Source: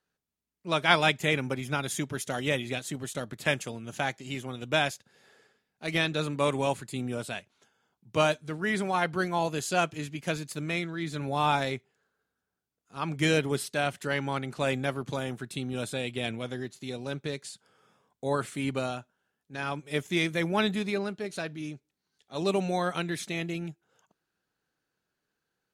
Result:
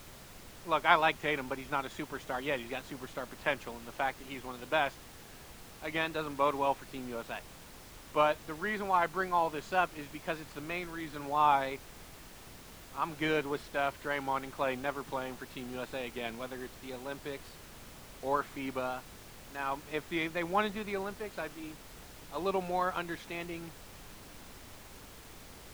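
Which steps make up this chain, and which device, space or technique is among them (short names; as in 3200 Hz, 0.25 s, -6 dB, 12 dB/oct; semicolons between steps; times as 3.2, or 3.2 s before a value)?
horn gramophone (BPF 240–3100 Hz; bell 1000 Hz +9 dB 0.77 oct; wow and flutter; pink noise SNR 15 dB); gain -5.5 dB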